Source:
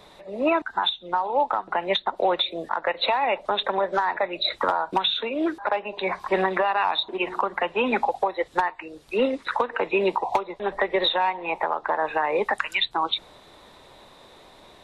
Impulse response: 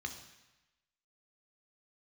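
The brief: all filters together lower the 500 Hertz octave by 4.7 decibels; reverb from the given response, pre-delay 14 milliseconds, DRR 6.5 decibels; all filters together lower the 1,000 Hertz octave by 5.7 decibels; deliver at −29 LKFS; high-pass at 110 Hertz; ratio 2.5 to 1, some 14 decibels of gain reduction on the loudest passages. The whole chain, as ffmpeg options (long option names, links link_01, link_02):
-filter_complex "[0:a]highpass=110,equalizer=frequency=500:width_type=o:gain=-4.5,equalizer=frequency=1000:width_type=o:gain=-5.5,acompressor=threshold=-43dB:ratio=2.5,asplit=2[link_01][link_02];[1:a]atrim=start_sample=2205,adelay=14[link_03];[link_02][link_03]afir=irnorm=-1:irlink=0,volume=-6.5dB[link_04];[link_01][link_04]amix=inputs=2:normalize=0,volume=10.5dB"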